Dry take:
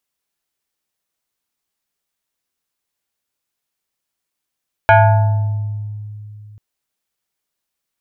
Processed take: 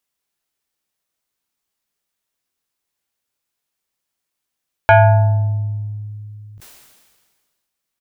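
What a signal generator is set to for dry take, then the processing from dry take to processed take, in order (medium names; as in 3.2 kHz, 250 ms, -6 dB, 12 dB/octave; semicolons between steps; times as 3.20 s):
FM tone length 1.69 s, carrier 105 Hz, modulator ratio 7.38, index 2, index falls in 1.48 s exponential, decay 3.08 s, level -4.5 dB
doubling 21 ms -12 dB; decay stretcher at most 35 dB/s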